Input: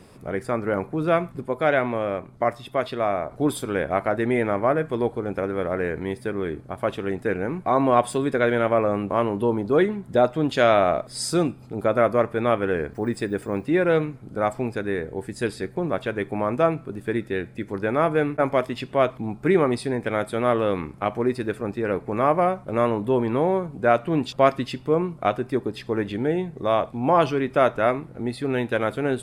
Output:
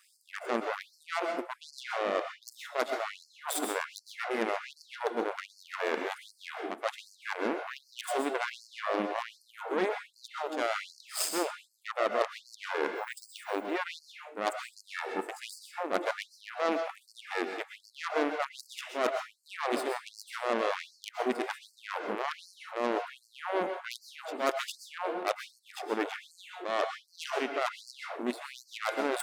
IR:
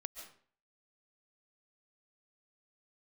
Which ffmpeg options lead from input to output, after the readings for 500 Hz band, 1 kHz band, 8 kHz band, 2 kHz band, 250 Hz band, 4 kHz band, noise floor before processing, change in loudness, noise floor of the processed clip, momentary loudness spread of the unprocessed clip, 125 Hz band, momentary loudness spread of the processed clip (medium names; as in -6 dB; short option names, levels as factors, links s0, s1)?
-12.5 dB, -9.5 dB, -1.0 dB, -6.0 dB, -14.5 dB, -2.5 dB, -46 dBFS, -11.0 dB, -66 dBFS, 8 LU, under -30 dB, 11 LU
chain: -filter_complex "[0:a]areverse,acompressor=threshold=0.0316:ratio=8,areverse,aexciter=amount=1.2:drive=7.4:freq=6300,aeval=exprs='0.0891*(cos(1*acos(clip(val(0)/0.0891,-1,1)))-cos(1*PI/2))+0.00316*(cos(3*acos(clip(val(0)/0.0891,-1,1)))-cos(3*PI/2))+0.0282*(cos(4*acos(clip(val(0)/0.0891,-1,1)))-cos(4*PI/2))+0.00631*(cos(6*acos(clip(val(0)/0.0891,-1,1)))-cos(6*PI/2))+0.00794*(cos(7*acos(clip(val(0)/0.0891,-1,1)))-cos(7*PI/2))':c=same[s0];[1:a]atrim=start_sample=2205,asetrate=48510,aresample=44100[s1];[s0][s1]afir=irnorm=-1:irlink=0,afftfilt=real='re*gte(b*sr/1024,200*pow(4300/200,0.5+0.5*sin(2*PI*1.3*pts/sr)))':imag='im*gte(b*sr/1024,200*pow(4300/200,0.5+0.5*sin(2*PI*1.3*pts/sr)))':win_size=1024:overlap=0.75,volume=2.66"